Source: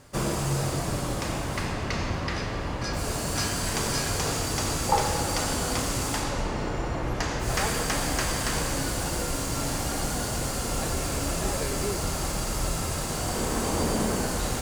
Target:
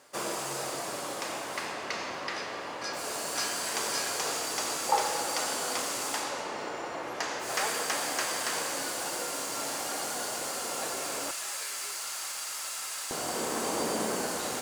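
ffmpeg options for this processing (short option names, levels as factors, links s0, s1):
-af "asetnsamples=n=441:p=0,asendcmd='11.31 highpass f 1400;13.11 highpass f 300',highpass=450,volume=0.794"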